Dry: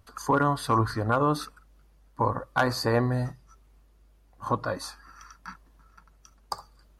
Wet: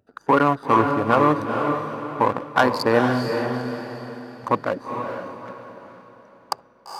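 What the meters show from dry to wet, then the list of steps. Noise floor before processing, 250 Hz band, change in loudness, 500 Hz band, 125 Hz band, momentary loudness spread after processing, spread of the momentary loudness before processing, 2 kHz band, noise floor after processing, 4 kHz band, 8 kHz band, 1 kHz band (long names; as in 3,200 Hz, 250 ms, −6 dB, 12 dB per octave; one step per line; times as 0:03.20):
−60 dBFS, +7.5 dB, +5.5 dB, +8.0 dB, −0.5 dB, 17 LU, 18 LU, +7.0 dB, −55 dBFS, +3.5 dB, −3.0 dB, +7.5 dB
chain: adaptive Wiener filter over 41 samples
leveller curve on the samples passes 1
high-pass filter 220 Hz 12 dB per octave
on a send: feedback delay with all-pass diffusion 459 ms, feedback 41%, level −5 dB
on the sum: level +5 dB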